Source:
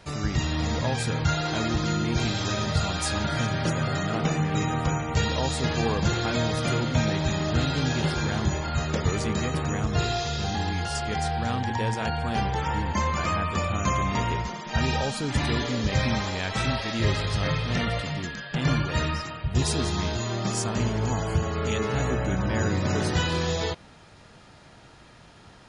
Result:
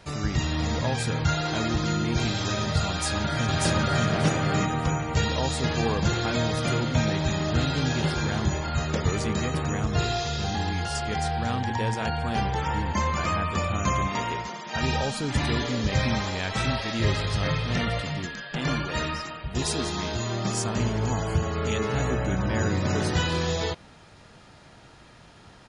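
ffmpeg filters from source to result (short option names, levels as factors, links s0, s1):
-filter_complex "[0:a]asplit=2[s0][s1];[s1]afade=t=in:st=2.89:d=0.01,afade=t=out:st=4.07:d=0.01,aecho=0:1:590|1180|1770:1|0.15|0.0225[s2];[s0][s2]amix=inputs=2:normalize=0,asettb=1/sr,asplit=3[s3][s4][s5];[s3]atrim=end=14.074[s6];[s4]atrim=start=14.07:end=14.83,asetpts=PTS-STARTPTS,afade=t=in:d=0.004:c=qsin,afade=t=out:st=0.756:d=0.004:c=qsin,highpass=f=270:p=1[s7];[s5]atrim=start=14.826[s8];[s6][s7]acrossfade=d=0.004:c1=hsin:c2=qsin[s9];[s9][s8]acrossfade=d=0.004:c1=qsin:c2=hsin,asettb=1/sr,asplit=3[s10][s11][s12];[s10]atrim=end=18.264[s13];[s11]atrim=start=18.26:end=20.14,asetpts=PTS-STARTPTS,afade=t=in:d=0.004:c=qsin,afade=t=out:st=1.876:d=0.004:c=qsin,equalizer=f=100:w=1.4:g=-11[s14];[s12]atrim=start=20.136[s15];[s13][s14]acrossfade=d=0.004:c1=hsin:c2=qsin[s16];[s16][s15]acrossfade=d=0.004:c1=qsin:c2=hsin"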